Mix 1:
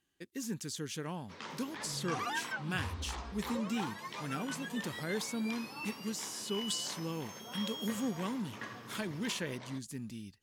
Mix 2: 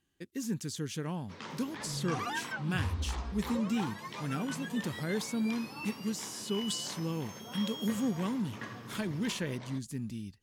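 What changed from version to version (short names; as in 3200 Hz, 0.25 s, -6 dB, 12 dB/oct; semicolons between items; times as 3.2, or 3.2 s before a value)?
master: add low shelf 250 Hz +8 dB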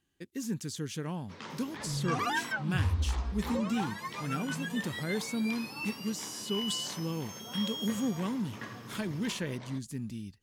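second sound +5.0 dB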